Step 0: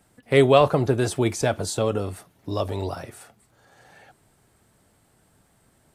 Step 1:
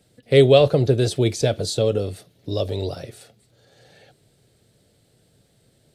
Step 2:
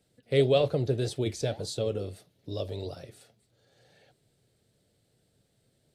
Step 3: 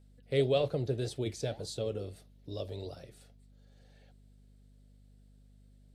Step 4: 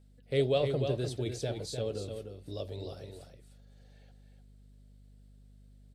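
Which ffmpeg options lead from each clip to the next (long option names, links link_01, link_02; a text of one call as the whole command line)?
ffmpeg -i in.wav -af "equalizer=frequency=125:width_type=o:width=1:gain=8,equalizer=frequency=500:width_type=o:width=1:gain=10,equalizer=frequency=1000:width_type=o:width=1:gain=-11,equalizer=frequency=4000:width_type=o:width=1:gain=11,volume=-3dB" out.wav
ffmpeg -i in.wav -af "flanger=delay=2.4:depth=8:regen=-83:speed=1.7:shape=triangular,volume=-5.5dB" out.wav
ffmpeg -i in.wav -af "aeval=exprs='val(0)+0.00224*(sin(2*PI*50*n/s)+sin(2*PI*2*50*n/s)/2+sin(2*PI*3*50*n/s)/3+sin(2*PI*4*50*n/s)/4+sin(2*PI*5*50*n/s)/5)':channel_layout=same,volume=-5dB" out.wav
ffmpeg -i in.wav -af "aecho=1:1:301:0.447" out.wav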